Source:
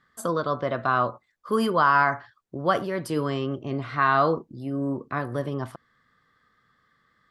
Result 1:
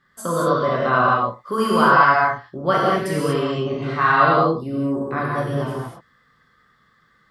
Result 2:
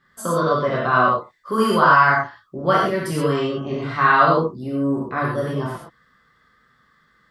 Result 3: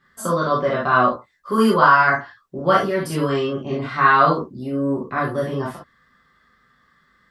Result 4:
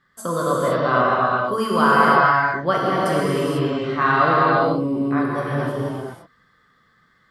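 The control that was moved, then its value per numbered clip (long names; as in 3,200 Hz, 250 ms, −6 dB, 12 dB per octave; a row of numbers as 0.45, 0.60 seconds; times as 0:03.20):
reverb whose tail is shaped and stops, gate: 260, 150, 90, 520 milliseconds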